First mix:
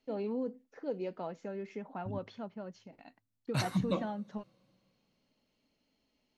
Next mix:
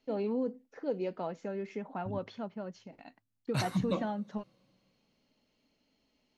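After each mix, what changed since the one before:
first voice +3.0 dB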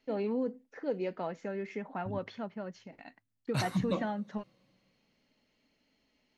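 first voice: add bell 1900 Hz +6.5 dB 0.72 oct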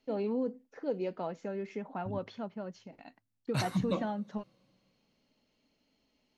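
first voice: add bell 1900 Hz -6.5 dB 0.72 oct

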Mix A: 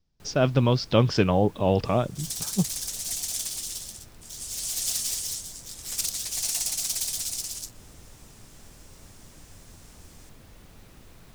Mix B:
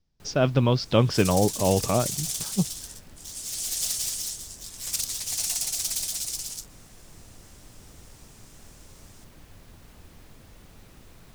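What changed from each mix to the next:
second sound: entry -1.05 s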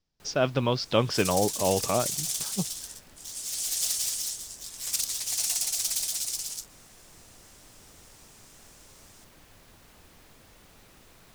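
master: add low shelf 280 Hz -9.5 dB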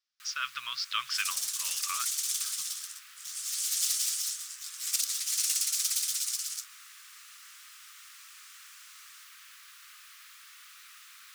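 first sound +7.0 dB; master: add elliptic high-pass 1200 Hz, stop band 40 dB

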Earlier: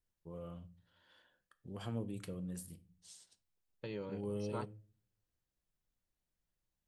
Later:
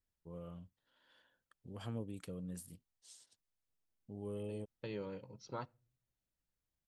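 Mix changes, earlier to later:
first voice: send off; second voice: entry +1.00 s

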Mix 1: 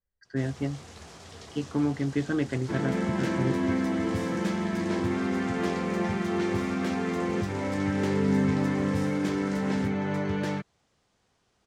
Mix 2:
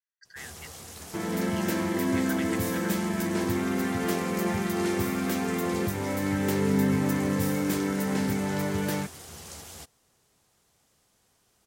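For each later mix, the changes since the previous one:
speech: add HPF 1400 Hz 24 dB/oct; second sound: entry -1.55 s; master: remove air absorption 98 m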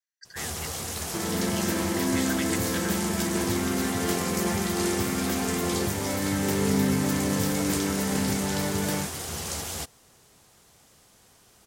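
speech: add high shelf 3400 Hz +12 dB; first sound +10.5 dB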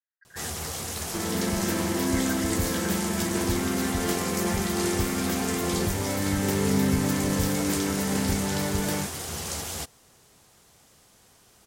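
speech: add LPF 1800 Hz 24 dB/oct; second sound: remove HPF 97 Hz 24 dB/oct

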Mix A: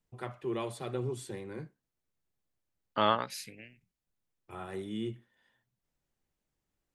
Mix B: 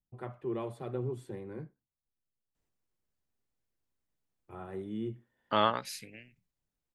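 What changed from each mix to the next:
first voice: add bell 6300 Hz -15 dB 3 oct; second voice: entry +2.55 s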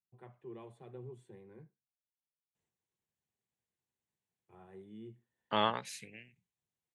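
first voice -10.0 dB; master: add speaker cabinet 110–9700 Hz, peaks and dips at 280 Hz -9 dB, 590 Hz -6 dB, 1300 Hz -8 dB, 4900 Hz -10 dB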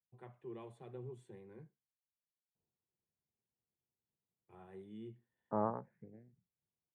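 second voice: add Gaussian blur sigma 8.9 samples

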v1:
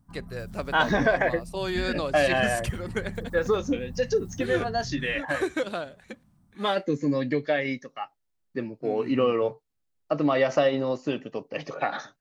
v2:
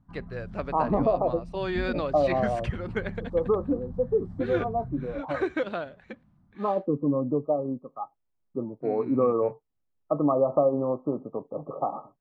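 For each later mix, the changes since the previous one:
second voice: add brick-wall FIR low-pass 1300 Hz; master: add LPF 2700 Hz 12 dB/oct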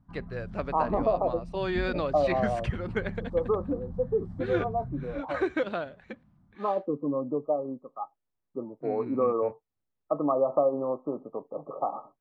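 second voice: add HPF 400 Hz 6 dB/oct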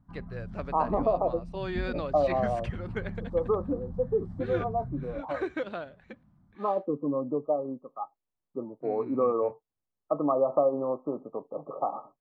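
first voice -4.5 dB

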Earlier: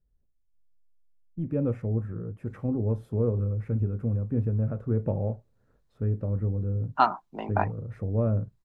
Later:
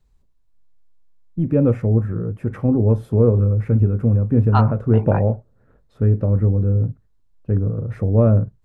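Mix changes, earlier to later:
first voice +11.0 dB; second voice: entry -2.45 s

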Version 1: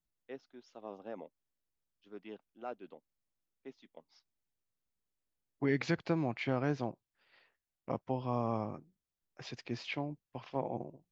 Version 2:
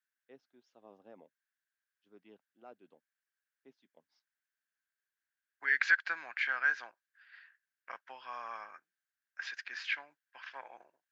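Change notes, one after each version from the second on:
first voice -11.0 dB; second voice: add resonant high-pass 1600 Hz, resonance Q 9.5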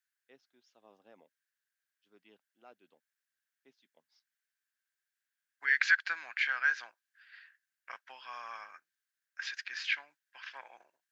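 master: add tilt shelf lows -6.5 dB, about 1400 Hz

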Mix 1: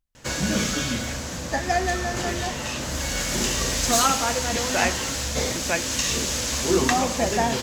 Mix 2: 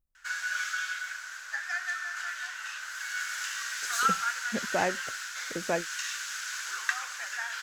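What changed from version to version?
speech: add bell 3200 Hz -14 dB 2 oct; background: add ladder high-pass 1400 Hz, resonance 80%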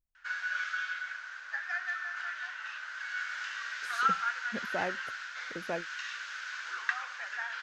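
speech -6.0 dB; background: add air absorption 220 m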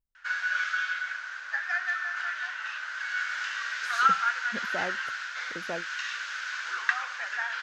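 background +5.5 dB

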